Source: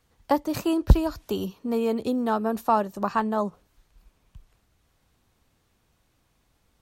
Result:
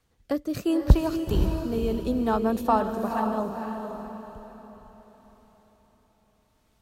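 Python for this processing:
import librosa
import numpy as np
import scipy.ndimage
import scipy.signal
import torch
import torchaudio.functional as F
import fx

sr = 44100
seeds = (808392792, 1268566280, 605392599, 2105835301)

y = fx.rotary(x, sr, hz=0.7)
y = fx.echo_diffused(y, sr, ms=504, feedback_pct=41, wet_db=-5.0)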